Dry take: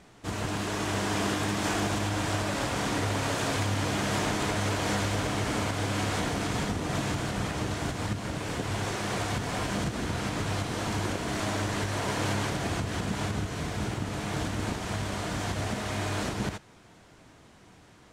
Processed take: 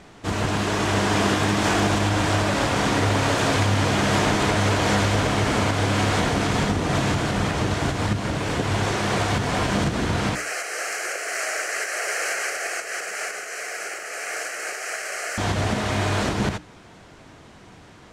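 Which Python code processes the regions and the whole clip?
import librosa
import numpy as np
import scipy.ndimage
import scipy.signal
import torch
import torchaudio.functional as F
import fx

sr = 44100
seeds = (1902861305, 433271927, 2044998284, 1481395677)

y = fx.chain(x, sr, fx.highpass(hz=350.0, slope=24),
    fx.tilt_shelf(db=-8.0, hz=1200.0),
    fx.fixed_phaser(hz=970.0, stages=6), at=(10.35, 15.38))
y = fx.high_shelf(y, sr, hz=9300.0, db=-9.5)
y = fx.hum_notches(y, sr, base_hz=60, count=5)
y = y * 10.0 ** (8.5 / 20.0)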